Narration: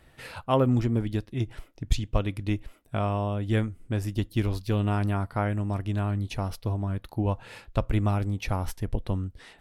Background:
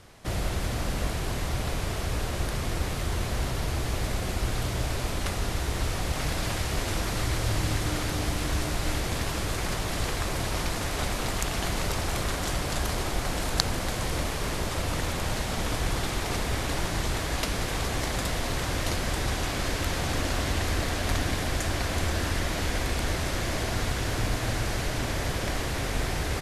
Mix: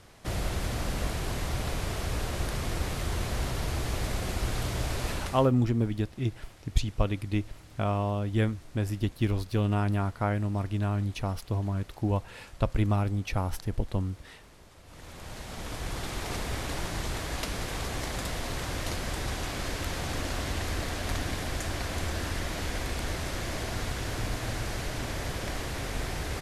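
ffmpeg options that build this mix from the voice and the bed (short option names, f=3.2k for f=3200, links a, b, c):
-filter_complex "[0:a]adelay=4850,volume=-1dB[a];[1:a]volume=18dB,afade=t=out:st=5.11:d=0.4:silence=0.0749894,afade=t=in:st=14.84:d=1.45:silence=0.1[b];[a][b]amix=inputs=2:normalize=0"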